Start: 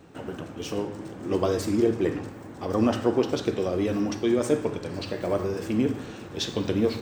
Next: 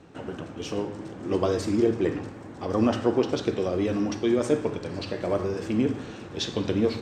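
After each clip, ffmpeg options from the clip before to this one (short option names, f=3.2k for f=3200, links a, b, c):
-af "lowpass=7.7k"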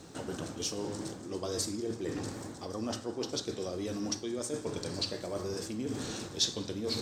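-af "areverse,acompressor=threshold=-34dB:ratio=6,areverse,aexciter=amount=6.1:drive=2.7:freq=3.8k"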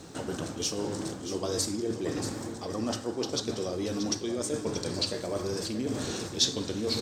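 -af "aecho=1:1:632:0.316,volume=4dB"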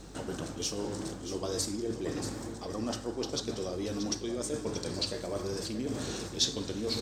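-af "aeval=exprs='val(0)+0.00447*(sin(2*PI*50*n/s)+sin(2*PI*2*50*n/s)/2+sin(2*PI*3*50*n/s)/3+sin(2*PI*4*50*n/s)/4+sin(2*PI*5*50*n/s)/5)':c=same,volume=-3dB"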